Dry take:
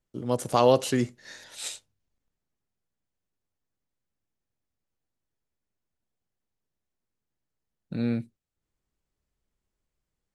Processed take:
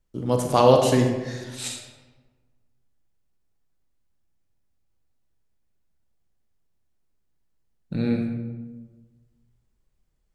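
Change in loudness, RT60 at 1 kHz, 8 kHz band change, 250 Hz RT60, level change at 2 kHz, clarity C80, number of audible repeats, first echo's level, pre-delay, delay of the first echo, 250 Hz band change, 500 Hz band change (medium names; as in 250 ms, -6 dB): +4.0 dB, 1.2 s, +3.5 dB, 1.6 s, +4.0 dB, 6.5 dB, no echo, no echo, 30 ms, no echo, +5.0 dB, +5.0 dB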